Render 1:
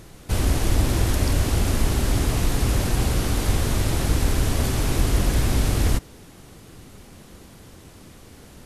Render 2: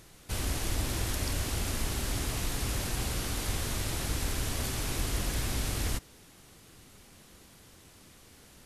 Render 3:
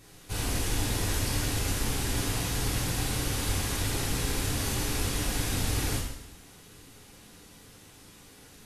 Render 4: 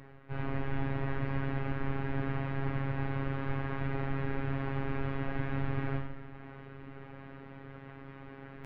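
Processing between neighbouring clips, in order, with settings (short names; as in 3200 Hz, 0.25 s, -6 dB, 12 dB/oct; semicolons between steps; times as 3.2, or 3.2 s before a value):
tilt shelf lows -4 dB, about 1100 Hz; gain -8.5 dB
two-slope reverb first 0.75 s, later 2.5 s, from -24 dB, DRR -6.5 dB; gain -4 dB
inverse Chebyshev low-pass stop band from 8200 Hz, stop band 70 dB; reverse; upward compressor, threshold -35 dBFS; reverse; robotiser 136 Hz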